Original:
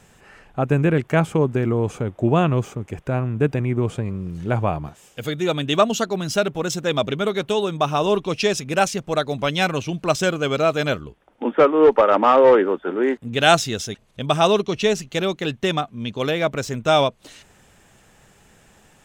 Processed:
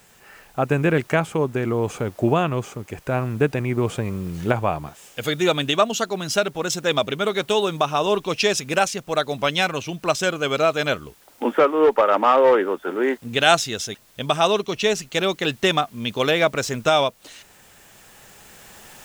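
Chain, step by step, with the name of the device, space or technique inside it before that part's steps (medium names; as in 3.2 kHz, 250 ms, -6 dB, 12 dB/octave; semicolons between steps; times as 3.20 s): bass shelf 370 Hz -8 dB; cheap recorder with automatic gain (white noise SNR 35 dB; recorder AGC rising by 5.1 dB/s)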